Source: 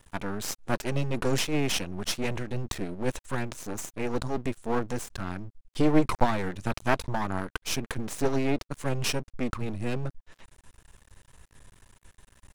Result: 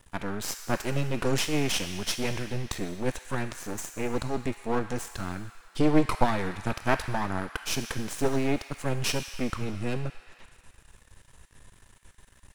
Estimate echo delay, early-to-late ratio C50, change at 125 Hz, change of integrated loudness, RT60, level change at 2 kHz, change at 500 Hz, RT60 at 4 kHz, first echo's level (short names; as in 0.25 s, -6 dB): none, 9.0 dB, 0.0 dB, +0.5 dB, 2.5 s, +1.0 dB, 0.0 dB, 2.0 s, none